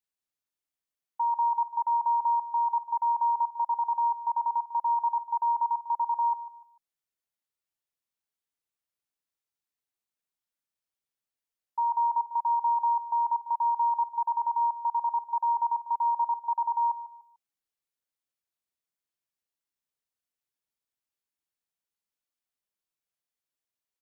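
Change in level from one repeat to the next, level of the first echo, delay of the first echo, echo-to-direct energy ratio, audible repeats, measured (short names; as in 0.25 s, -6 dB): -10.0 dB, -14.5 dB, 0.148 s, -14.0 dB, 3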